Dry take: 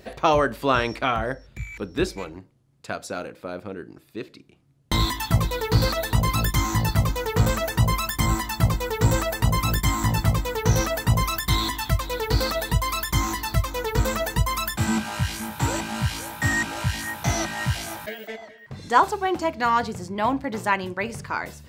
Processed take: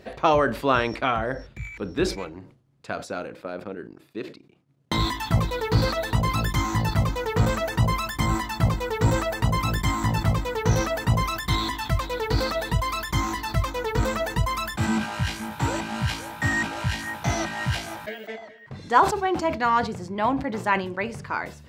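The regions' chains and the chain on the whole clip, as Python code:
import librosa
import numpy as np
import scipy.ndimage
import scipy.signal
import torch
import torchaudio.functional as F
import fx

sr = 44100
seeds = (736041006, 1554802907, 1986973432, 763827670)

y = fx.chain(x, sr, fx.highpass(hz=120.0, slope=12),
    fx.transient(attack_db=1, sustain_db=-9), at=(3.43, 4.98))
y = fx.lowpass(y, sr, hz=3700.0, slope=6)
y = fx.low_shelf(y, sr, hz=68.0, db=-6.0)
y = fx.sustainer(y, sr, db_per_s=120.0)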